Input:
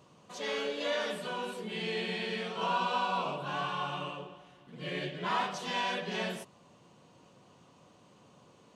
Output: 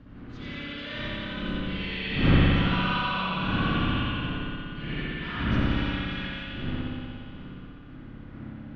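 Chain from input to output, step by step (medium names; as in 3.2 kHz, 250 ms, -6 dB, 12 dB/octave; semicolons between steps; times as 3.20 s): wind noise 410 Hz -32 dBFS; Doppler pass-by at 3.14 s, 10 m/s, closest 13 m; low-pass 4.5 kHz 24 dB/octave; high-order bell 610 Hz -12 dB; on a send: thinning echo 87 ms, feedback 81%, high-pass 390 Hz, level -6.5 dB; on the sum: spring tank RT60 2.2 s, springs 59 ms, chirp 75 ms, DRR -7 dB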